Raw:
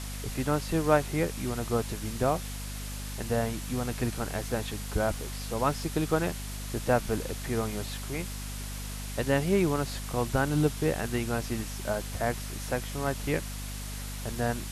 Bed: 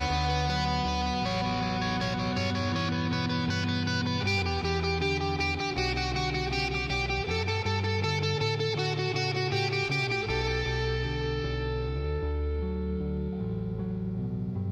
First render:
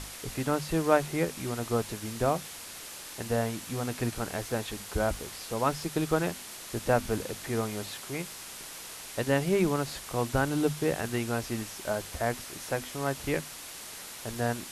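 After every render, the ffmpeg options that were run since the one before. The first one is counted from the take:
-af "bandreject=f=50:t=h:w=6,bandreject=f=100:t=h:w=6,bandreject=f=150:t=h:w=6,bandreject=f=200:t=h:w=6,bandreject=f=250:t=h:w=6"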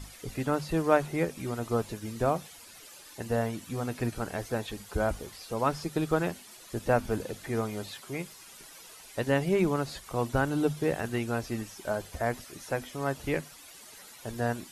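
-af "afftdn=nr=12:nf=-44"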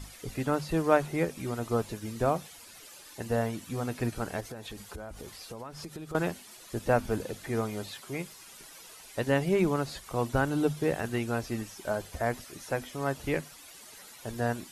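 -filter_complex "[0:a]asettb=1/sr,asplit=3[s0][s1][s2];[s0]atrim=end=4.404[s3];[s1]atrim=start=4.4:end=6.15,asetpts=PTS-STARTPTS,afade=t=in:d=0.004:c=qsin,afade=t=out:st=1.746:d=0.004:c=qsin,acompressor=threshold=0.0141:ratio=12:attack=3.2:release=140:knee=1:detection=peak[s4];[s2]atrim=start=6.146[s5];[s3][s4]acrossfade=d=0.004:c1=hsin:c2=qsin[s6];[s6][s5]acrossfade=d=0.004:c1=qsin:c2=hsin"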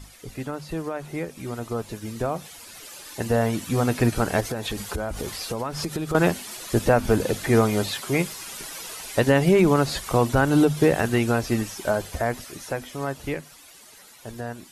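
-af "alimiter=limit=0.0891:level=0:latency=1:release=164,dynaudnorm=f=360:g=17:m=4.47"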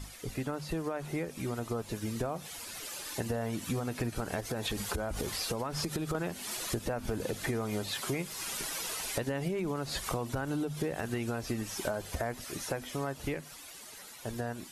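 -af "alimiter=limit=0.211:level=0:latency=1:release=157,acompressor=threshold=0.0282:ratio=6"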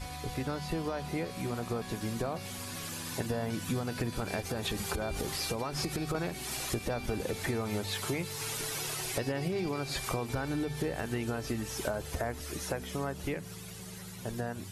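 -filter_complex "[1:a]volume=0.178[s0];[0:a][s0]amix=inputs=2:normalize=0"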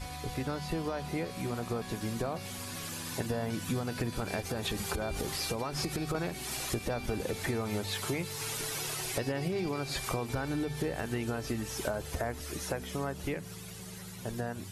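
-af anull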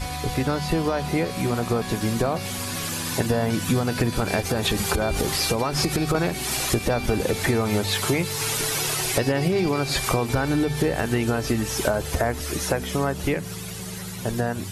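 -af "volume=3.55"

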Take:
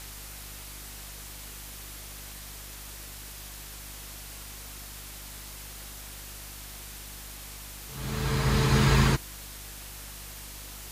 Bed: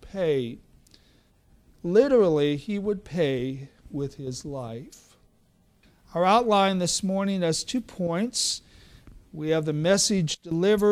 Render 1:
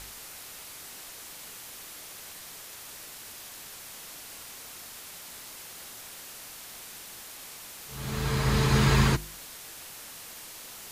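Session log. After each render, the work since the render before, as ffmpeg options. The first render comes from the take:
-af "bandreject=f=50:t=h:w=4,bandreject=f=100:t=h:w=4,bandreject=f=150:t=h:w=4,bandreject=f=200:t=h:w=4,bandreject=f=250:t=h:w=4,bandreject=f=300:t=h:w=4,bandreject=f=350:t=h:w=4"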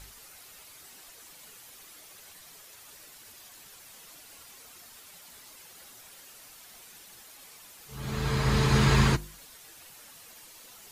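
-af "afftdn=nr=9:nf=-45"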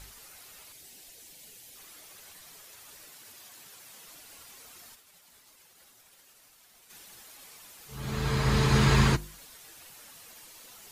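-filter_complex "[0:a]asettb=1/sr,asplit=3[s0][s1][s2];[s0]atrim=end=0.724[s3];[s1]atrim=start=0.72:end=1.76,asetpts=PTS-STARTPTS,afade=t=in:d=0.004:c=qsin,afade=t=out:st=1.036:d=0.004:c=qsin,equalizer=f=1200:t=o:w=0.97:g=-13[s4];[s2]atrim=start=1.756[s5];[s3][s4]acrossfade=d=0.004:c1=hsin:c2=qsin[s6];[s6][s5]acrossfade=d=0.004:c1=qsin:c2=hsin,asettb=1/sr,asplit=3[s7][s8][s9];[s7]atrim=end=3.094[s10];[s8]atrim=start=3.09:end=4.08,asetpts=PTS-STARTPTS,afade=t=in:d=0.004:c=qsin,afade=t=out:st=0.986:d=0.004:c=qsin,highpass=91[s11];[s9]atrim=start=4.076[s12];[s10][s11]acrossfade=d=0.004:c1=hsin:c2=qsin[s13];[s13][s12]acrossfade=d=0.004:c1=qsin:c2=hsin,asplit=3[s14][s15][s16];[s14]afade=t=out:st=4.94:d=0.02[s17];[s15]agate=range=0.0224:threshold=0.00562:ratio=3:release=100:detection=peak,afade=t=in:st=4.94:d=0.02,afade=t=out:st=6.89:d=0.02[s18];[s16]afade=t=in:st=6.89:d=0.02[s19];[s17][s18][s19]amix=inputs=3:normalize=0"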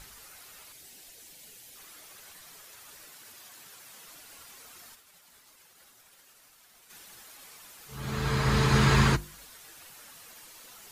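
-af "equalizer=f=1400:w=1.5:g=3,bandreject=f=50:t=h:w=6,bandreject=f=100:t=h:w=6"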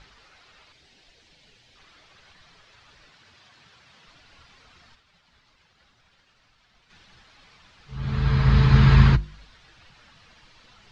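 -af "lowpass=f=4600:w=0.5412,lowpass=f=4600:w=1.3066,asubboost=boost=4:cutoff=170"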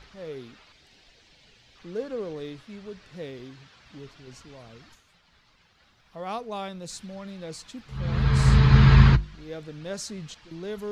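-filter_complex "[1:a]volume=0.211[s0];[0:a][s0]amix=inputs=2:normalize=0"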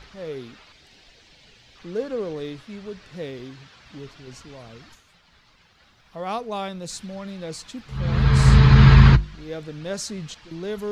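-af "volume=1.68,alimiter=limit=0.794:level=0:latency=1"

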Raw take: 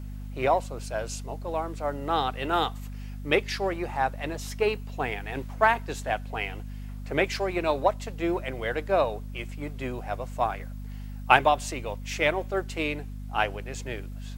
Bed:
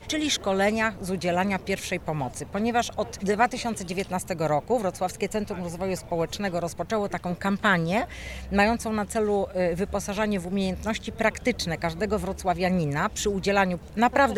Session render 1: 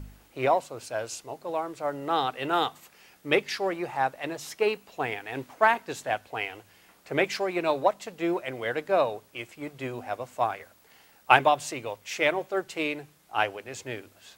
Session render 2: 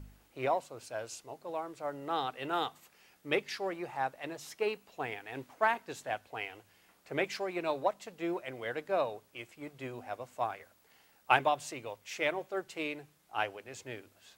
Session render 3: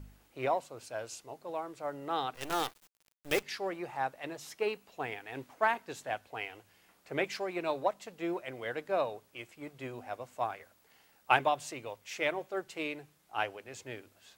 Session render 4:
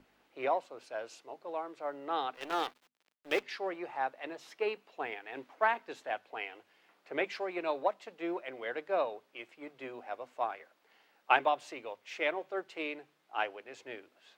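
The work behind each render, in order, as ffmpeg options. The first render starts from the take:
-af "bandreject=f=50:t=h:w=4,bandreject=f=100:t=h:w=4,bandreject=f=150:t=h:w=4,bandreject=f=200:t=h:w=4,bandreject=f=250:t=h:w=4"
-af "volume=0.422"
-filter_complex "[0:a]asettb=1/sr,asplit=3[s0][s1][s2];[s0]atrim=end=2.344[s3];[s1]atrim=start=2.34:end=3.43,asetpts=PTS-STARTPTS,afade=t=in:d=0.004:c=qsin,afade=t=out:st=1.086:d=0.004:c=qsin,acrusher=bits=6:dc=4:mix=0:aa=0.000001[s4];[s2]atrim=start=3.426[s5];[s3][s4]acrossfade=d=0.004:c1=hsin:c2=qsin[s6];[s6][s5]acrossfade=d=0.004:c1=qsin:c2=hsin"
-filter_complex "[0:a]acrossover=split=230 4500:gain=0.0794 1 0.178[s0][s1][s2];[s0][s1][s2]amix=inputs=3:normalize=0,bandreject=f=50:t=h:w=6,bandreject=f=100:t=h:w=6,bandreject=f=150:t=h:w=6,bandreject=f=200:t=h:w=6,bandreject=f=250:t=h:w=6"

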